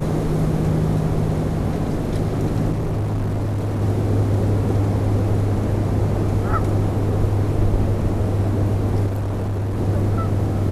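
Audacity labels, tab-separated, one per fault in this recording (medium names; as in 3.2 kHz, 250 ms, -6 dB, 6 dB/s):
2.710000	3.820000	clipped -19 dBFS
9.060000	9.780000	clipped -20 dBFS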